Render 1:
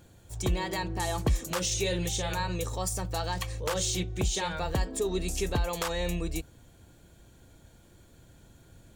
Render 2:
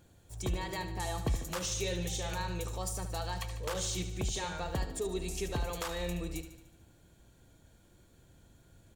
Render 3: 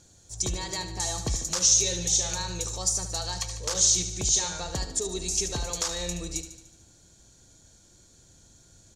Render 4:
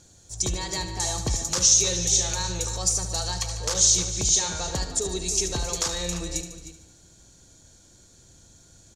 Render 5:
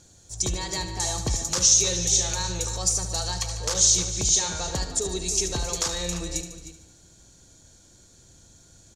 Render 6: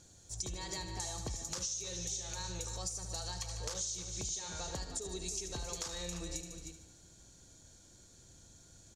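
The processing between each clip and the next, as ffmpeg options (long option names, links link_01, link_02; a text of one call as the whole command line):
ffmpeg -i in.wav -af "aecho=1:1:74|148|222|296|370|444|518:0.299|0.17|0.097|0.0553|0.0315|0.018|0.0102,volume=-6dB" out.wav
ffmpeg -i in.wav -af "aexciter=amount=1.9:drive=7.6:freq=4000,lowpass=frequency=6400:width_type=q:width=3.6,volume=1.5dB" out.wav
ffmpeg -i in.wav -filter_complex "[0:a]asplit=2[link_01][link_02];[link_02]adelay=309,volume=-10dB,highshelf=frequency=4000:gain=-6.95[link_03];[link_01][link_03]amix=inputs=2:normalize=0,volume=2.5dB" out.wav
ffmpeg -i in.wav -af anull out.wav
ffmpeg -i in.wav -af "acompressor=threshold=-32dB:ratio=6,volume=-5.5dB" out.wav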